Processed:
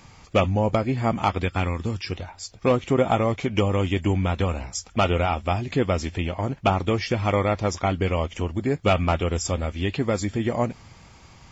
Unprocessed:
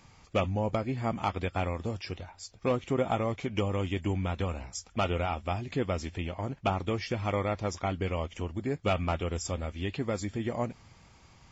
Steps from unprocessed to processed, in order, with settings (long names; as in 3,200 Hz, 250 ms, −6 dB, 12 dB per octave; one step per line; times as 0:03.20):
0:01.41–0:02.10: parametric band 630 Hz −5.5 dB → −14 dB 0.78 octaves
level +8 dB